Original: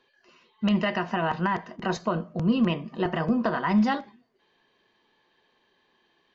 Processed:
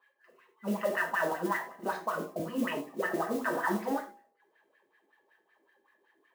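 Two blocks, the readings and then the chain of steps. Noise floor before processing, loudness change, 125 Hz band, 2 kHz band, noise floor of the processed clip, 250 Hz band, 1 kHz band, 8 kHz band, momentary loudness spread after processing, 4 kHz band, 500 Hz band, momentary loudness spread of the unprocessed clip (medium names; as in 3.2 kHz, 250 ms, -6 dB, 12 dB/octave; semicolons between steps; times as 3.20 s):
-69 dBFS, -6.5 dB, -15.0 dB, -1.0 dB, -73 dBFS, -10.5 dB, -4.5 dB, no reading, 6 LU, -10.5 dB, -3.0 dB, 6 LU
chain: wah-wah 5.3 Hz 310–1900 Hz, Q 6; in parallel at +1.5 dB: peak limiter -30 dBFS, peak gain reduction 7 dB; on the sum: de-hum 62.3 Hz, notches 18; modulation noise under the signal 20 dB; gated-style reverb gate 130 ms falling, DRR 2 dB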